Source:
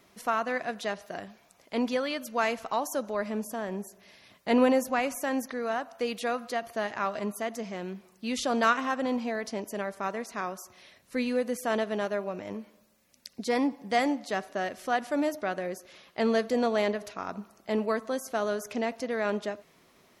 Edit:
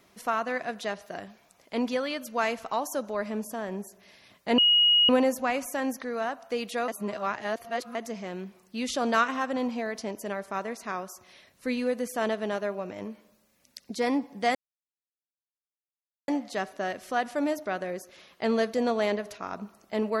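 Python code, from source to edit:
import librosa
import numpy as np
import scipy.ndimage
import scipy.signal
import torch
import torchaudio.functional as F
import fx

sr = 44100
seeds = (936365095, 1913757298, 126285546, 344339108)

y = fx.edit(x, sr, fx.insert_tone(at_s=4.58, length_s=0.51, hz=2890.0, db=-17.0),
    fx.reverse_span(start_s=6.37, length_s=1.07),
    fx.insert_silence(at_s=14.04, length_s=1.73), tone=tone)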